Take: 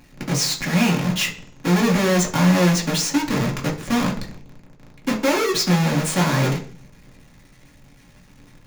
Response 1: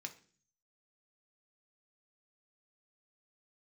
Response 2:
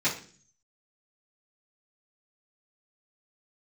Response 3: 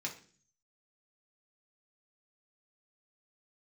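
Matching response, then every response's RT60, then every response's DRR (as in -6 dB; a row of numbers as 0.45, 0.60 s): 3; 0.45, 0.45, 0.45 s; 4.0, -12.0, -2.0 dB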